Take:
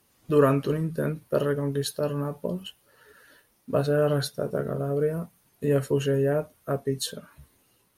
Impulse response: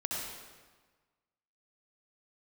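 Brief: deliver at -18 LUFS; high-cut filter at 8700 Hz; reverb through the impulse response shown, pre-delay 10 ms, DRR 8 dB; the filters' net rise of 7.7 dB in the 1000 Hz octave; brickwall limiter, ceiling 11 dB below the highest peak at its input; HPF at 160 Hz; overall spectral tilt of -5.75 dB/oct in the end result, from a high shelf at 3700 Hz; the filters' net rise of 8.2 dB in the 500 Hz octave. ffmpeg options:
-filter_complex "[0:a]highpass=160,lowpass=8.7k,equalizer=f=500:t=o:g=8,equalizer=f=1k:t=o:g=8.5,highshelf=f=3.7k:g=-4.5,alimiter=limit=-12dB:level=0:latency=1,asplit=2[a][b];[1:a]atrim=start_sample=2205,adelay=10[c];[b][c]afir=irnorm=-1:irlink=0,volume=-12dB[d];[a][d]amix=inputs=2:normalize=0,volume=5dB"

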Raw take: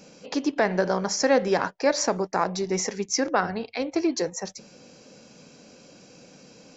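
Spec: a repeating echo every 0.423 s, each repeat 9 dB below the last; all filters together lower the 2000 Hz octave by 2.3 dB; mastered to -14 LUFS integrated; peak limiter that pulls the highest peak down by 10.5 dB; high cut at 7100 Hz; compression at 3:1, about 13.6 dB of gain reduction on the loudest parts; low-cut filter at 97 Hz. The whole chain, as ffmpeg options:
-af "highpass=97,lowpass=7.1k,equalizer=f=2k:t=o:g=-3,acompressor=threshold=-35dB:ratio=3,alimiter=level_in=6.5dB:limit=-24dB:level=0:latency=1,volume=-6.5dB,aecho=1:1:423|846|1269|1692:0.355|0.124|0.0435|0.0152,volume=27dB"

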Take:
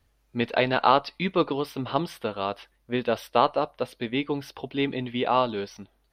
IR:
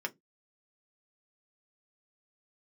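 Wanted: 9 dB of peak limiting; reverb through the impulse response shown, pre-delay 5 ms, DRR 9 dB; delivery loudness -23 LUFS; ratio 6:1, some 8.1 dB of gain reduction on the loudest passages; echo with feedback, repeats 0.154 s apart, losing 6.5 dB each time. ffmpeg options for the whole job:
-filter_complex "[0:a]acompressor=threshold=-22dB:ratio=6,alimiter=limit=-18dB:level=0:latency=1,aecho=1:1:154|308|462|616|770|924:0.473|0.222|0.105|0.0491|0.0231|0.0109,asplit=2[a][b];[1:a]atrim=start_sample=2205,adelay=5[c];[b][c]afir=irnorm=-1:irlink=0,volume=-12.5dB[d];[a][d]amix=inputs=2:normalize=0,volume=8dB"

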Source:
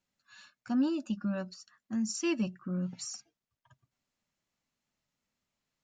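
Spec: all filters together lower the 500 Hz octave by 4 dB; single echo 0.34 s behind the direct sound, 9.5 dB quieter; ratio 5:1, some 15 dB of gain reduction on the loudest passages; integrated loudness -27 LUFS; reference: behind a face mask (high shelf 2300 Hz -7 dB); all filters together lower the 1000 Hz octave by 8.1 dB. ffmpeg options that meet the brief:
-af "equalizer=f=500:t=o:g=-5,equalizer=f=1k:t=o:g=-8,acompressor=threshold=-44dB:ratio=5,highshelf=f=2.3k:g=-7,aecho=1:1:340:0.335,volume=21dB"

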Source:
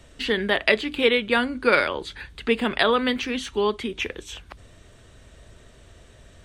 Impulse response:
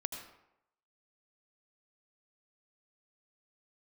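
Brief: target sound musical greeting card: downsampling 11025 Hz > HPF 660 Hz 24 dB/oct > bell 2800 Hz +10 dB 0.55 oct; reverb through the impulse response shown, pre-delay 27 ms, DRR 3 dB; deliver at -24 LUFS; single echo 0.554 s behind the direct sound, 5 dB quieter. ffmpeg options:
-filter_complex "[0:a]aecho=1:1:554:0.562,asplit=2[a][b];[1:a]atrim=start_sample=2205,adelay=27[c];[b][c]afir=irnorm=-1:irlink=0,volume=-3.5dB[d];[a][d]amix=inputs=2:normalize=0,aresample=11025,aresample=44100,highpass=f=660:w=0.5412,highpass=f=660:w=1.3066,equalizer=f=2.8k:t=o:w=0.55:g=10,volume=-5.5dB"

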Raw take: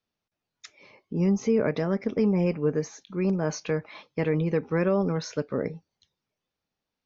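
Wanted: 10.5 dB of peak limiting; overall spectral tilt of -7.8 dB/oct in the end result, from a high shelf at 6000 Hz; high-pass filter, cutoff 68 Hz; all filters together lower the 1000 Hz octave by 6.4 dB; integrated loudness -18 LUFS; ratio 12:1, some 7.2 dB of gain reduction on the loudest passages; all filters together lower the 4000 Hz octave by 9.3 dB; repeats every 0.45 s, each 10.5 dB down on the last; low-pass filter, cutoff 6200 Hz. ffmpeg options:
-af "highpass=68,lowpass=6.2k,equalizer=f=1k:t=o:g=-8,equalizer=f=4k:t=o:g=-7.5,highshelf=f=6k:g=-7.5,acompressor=threshold=-27dB:ratio=12,alimiter=level_in=5dB:limit=-24dB:level=0:latency=1,volume=-5dB,aecho=1:1:450|900|1350:0.299|0.0896|0.0269,volume=20.5dB"

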